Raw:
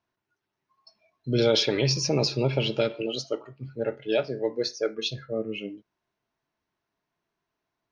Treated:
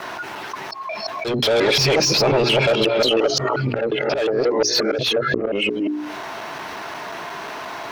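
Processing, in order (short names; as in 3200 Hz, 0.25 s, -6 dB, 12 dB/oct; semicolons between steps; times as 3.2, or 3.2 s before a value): local time reversal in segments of 0.178 s; overdrive pedal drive 23 dB, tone 2500 Hz, clips at -10 dBFS; bell 790 Hz +3 dB 0.72 oct; auto swell 0.426 s; notches 60/120/180/240/300/360/420 Hz; fast leveller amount 70%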